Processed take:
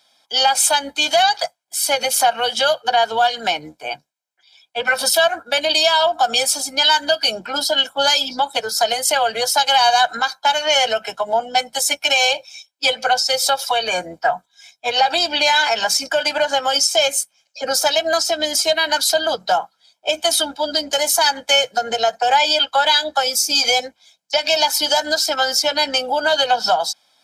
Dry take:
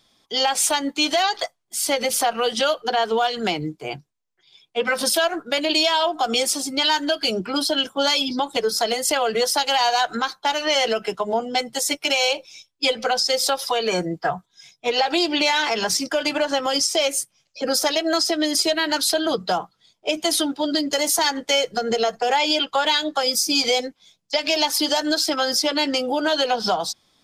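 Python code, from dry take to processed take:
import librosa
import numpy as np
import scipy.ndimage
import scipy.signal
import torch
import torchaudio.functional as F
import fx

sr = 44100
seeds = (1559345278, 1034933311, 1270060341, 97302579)

y = fx.octave_divider(x, sr, octaves=2, level_db=-5.0)
y = scipy.signal.sosfilt(scipy.signal.butter(2, 430.0, 'highpass', fs=sr, output='sos'), y)
y = y + 0.67 * np.pad(y, (int(1.3 * sr / 1000.0), 0))[:len(y)]
y = y * 10.0 ** (2.5 / 20.0)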